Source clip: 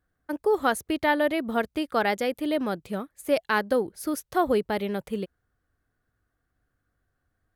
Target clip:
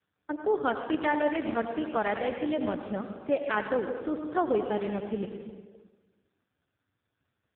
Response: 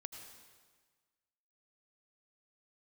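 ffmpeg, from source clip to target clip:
-filter_complex "[0:a]asplit=2[link_01][link_02];[link_02]acompressor=threshold=-34dB:ratio=8,volume=1dB[link_03];[link_01][link_03]amix=inputs=2:normalize=0[link_04];[1:a]atrim=start_sample=2205[link_05];[link_04][link_05]afir=irnorm=-1:irlink=0" -ar 8000 -c:a libopencore_amrnb -b:a 4750

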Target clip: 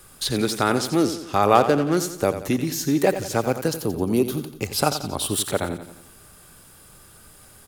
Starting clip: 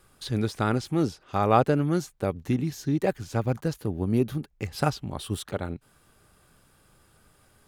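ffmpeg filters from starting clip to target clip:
ffmpeg -i in.wav -filter_complex "[0:a]highshelf=frequency=5800:gain=10.5,asplit=2[link_01][link_02];[link_02]alimiter=limit=-16dB:level=0:latency=1:release=379,volume=1dB[link_03];[link_01][link_03]amix=inputs=2:normalize=0,asettb=1/sr,asplit=3[link_04][link_05][link_06];[link_04]atrim=end=1.554[link_07];[link_05]atrim=start=1.55:end=1.97,asetpts=PTS-STARTPTS,afade=type=in:duration=0.004:curve=qsin,afade=type=out:start_time=0.416:duration=0.004:curve=qsin,adynamicsmooth=sensitivity=5.5:basefreq=620[link_08];[link_06]atrim=start=1.966[link_09];[link_07][link_08]acrossfade=duration=0.004:curve1=hsin:curve2=qsin[link_10];[link_10][link_09]acrossfade=duration=0.004:curve1=qsin:curve2=hsin,asettb=1/sr,asplit=3[link_11][link_12][link_13];[link_11]atrim=end=3.684[link_14];[link_12]atrim=start=3.68:end=5.28,asetpts=PTS-STARTPTS,afade=type=in:duration=0.004:curve=qsin,afade=type=out:start_time=1.596:duration=0.004:curve=qsin,equalizer=frequency=1800:width=2.8:gain=-7.5[link_15];[link_13]atrim=start=5.276[link_16];[link_14][link_15]acrossfade=duration=0.004:curve1=hsin:curve2=qsin[link_17];[link_17][link_16]acrossfade=duration=0.004:curve1=qsin:curve2=hsin,acrossover=split=240[link_18][link_19];[link_18]acompressor=threshold=-33dB:ratio=6[link_20];[link_20][link_19]amix=inputs=2:normalize=0,aecho=1:1:88|176|264|352|440:0.282|0.141|0.0705|0.0352|0.0176,volume=1.5dB" out.wav

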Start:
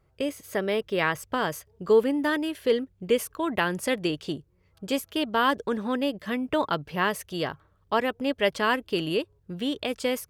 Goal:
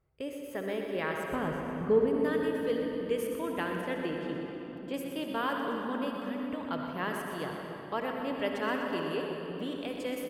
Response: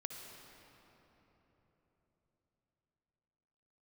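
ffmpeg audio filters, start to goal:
-filter_complex "[0:a]asplit=3[link_01][link_02][link_03];[link_01]afade=type=out:start_time=1.31:duration=0.02[link_04];[link_02]aemphasis=mode=reproduction:type=riaa,afade=type=in:start_time=1.31:duration=0.02,afade=type=out:start_time=2.06:duration=0.02[link_05];[link_03]afade=type=in:start_time=2.06:duration=0.02[link_06];[link_04][link_05][link_06]amix=inputs=3:normalize=0,asettb=1/sr,asplit=3[link_07][link_08][link_09];[link_07]atrim=end=3.814[link_10];[link_08]atrim=start=3.81:end=4.94,asetpts=PTS-STARTPTS,afade=type=in:duration=0.004:curve=qsin,afade=type=out:start_time=1.126:duration=0.004:curve=qsin,acrossover=split=3900[link_11][link_12];[link_12]acompressor=threshold=-54dB:ratio=4:attack=1:release=60[link_13];[link_11][link_13]amix=inputs=2:normalize=0[link_14];[link_09]atrim=start=4.936[link_15];[link_10][link_14]acrossfade=duration=0.004:curve1=hsin:curve2=qsin[link_16];[link_16][link_15]acrossfade=duration=0.004:curve1=qsin:curve2=hsin,equalizer=frequency=5100:width_type=o:width=1.4:gain=-5.5,asettb=1/sr,asplit=3[link_17][link_18][link_19];[link_17]atrim=end=6.284[link_20];[link_18]atrim=start=6.28:end=6.68,asetpts=PTS-STARTPTS,afade=type=in:duration=0.004:curve=qsin,afade=type=out:start_time=0.396:duration=0.004:curve=qsin,acompressor=threshold=-32dB:ratio=2.5[link_21];[link_19]atrim=start=6.676[link_22];[link_20][link_21]acrossfade=duration=0.004:curve1=hsin:curve2=qsin[link_23];[link_23][link_22]acrossfade=duration=0.004:curve1=qsin:curve2=hsin,aecho=1:1:123|246|369|492|615|738:0.355|0.177|0.0887|0.0444|0.0222|0.0111[link_24];[1:a]atrim=start_sample=2205,asetrate=43218,aresample=44100[link_25];[link_24][link_25]afir=irnorm=-1:irlink=0,volume=-5.5dB"

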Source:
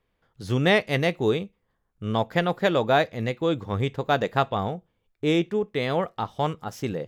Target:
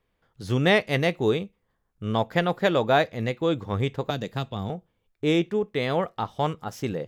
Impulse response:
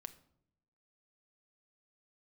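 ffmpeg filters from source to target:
-filter_complex "[0:a]asettb=1/sr,asplit=3[link_01][link_02][link_03];[link_01]atrim=end=4.104[link_04];[link_02]atrim=start=4.1:end=4.7,asetpts=PTS-STARTPTS,afade=type=in:duration=0.004:curve=qsin,afade=type=out:start_time=0.596:duration=0.004:curve=qsin,acrossover=split=310|3000[link_05][link_06][link_07];[link_06]acompressor=threshold=-37dB:ratio=3[link_08];[link_05][link_08][link_07]amix=inputs=3:normalize=0[link_09];[link_03]atrim=start=4.696[link_10];[link_04][link_09]acrossfade=duration=0.004:curve1=hsin:curve2=qsin[link_11];[link_11][link_10]acrossfade=duration=0.004:curve1=qsin:curve2=hsin"

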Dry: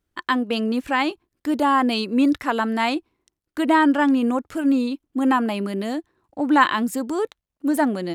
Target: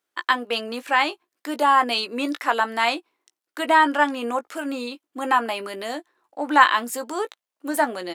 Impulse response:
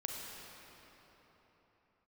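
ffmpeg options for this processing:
-filter_complex "[0:a]highpass=570,asplit=2[link_01][link_02];[link_02]adelay=17,volume=-10dB[link_03];[link_01][link_03]amix=inputs=2:normalize=0,volume=2.5dB"

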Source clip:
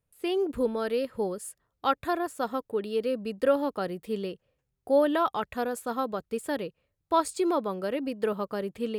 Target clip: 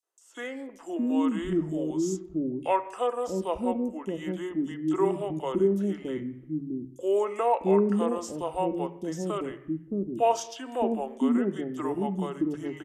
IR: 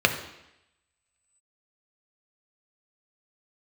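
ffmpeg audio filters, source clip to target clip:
-filter_complex "[0:a]equalizer=frequency=160:width_type=o:width=0.33:gain=-11.5,asetrate=30870,aresample=44100,acrossover=split=420|3500[link_01][link_02][link_03];[link_02]adelay=30[link_04];[link_01]adelay=650[link_05];[link_05][link_04][link_03]amix=inputs=3:normalize=0,asplit=2[link_06][link_07];[1:a]atrim=start_sample=2205,afade=type=out:start_time=0.41:duration=0.01,atrim=end_sample=18522,lowpass=3200[link_08];[link_07][link_08]afir=irnorm=-1:irlink=0,volume=-19.5dB[link_09];[link_06][link_09]amix=inputs=2:normalize=0"

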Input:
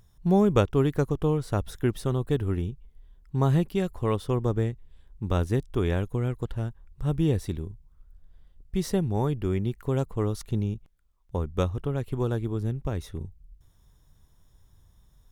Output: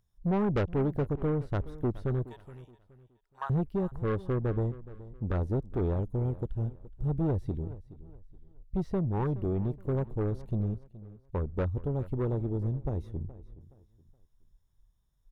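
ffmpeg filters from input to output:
ffmpeg -i in.wav -filter_complex "[0:a]acrossover=split=4500[link_01][link_02];[link_02]acompressor=threshold=-54dB:ratio=4:attack=1:release=60[link_03];[link_01][link_03]amix=inputs=2:normalize=0,afwtdn=0.02,asettb=1/sr,asplit=3[link_04][link_05][link_06];[link_04]atrim=end=2.244[link_07];[link_05]atrim=start=2.24:end=3.5,asetpts=PTS-STARTPTS,afade=type=in:duration=0.004:curve=qsin,afade=type=out:start_time=1.256:duration=0.004:curve=qsin,highpass=frequency=920:width=0.5412,highpass=frequency=920:width=1.3066[link_08];[link_06]atrim=start=3.496[link_09];[link_07][link_08]acrossfade=duration=0.004:curve1=hsin:curve2=qsin[link_10];[link_10][link_09]acrossfade=duration=0.004:curve1=qsin:curve2=hsin,asoftclip=type=tanh:threshold=-23.5dB,aecho=1:1:421|842|1263:0.133|0.0413|0.0128" out.wav

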